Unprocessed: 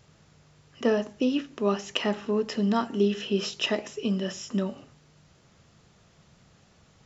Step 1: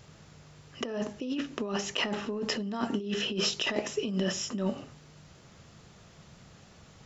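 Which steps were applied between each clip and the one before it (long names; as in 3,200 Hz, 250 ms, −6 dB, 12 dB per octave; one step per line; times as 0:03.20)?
compressor whose output falls as the input rises −31 dBFS, ratio −1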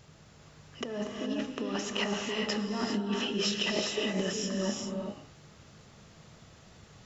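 reverb whose tail is shaped and stops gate 440 ms rising, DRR 1 dB
level −2.5 dB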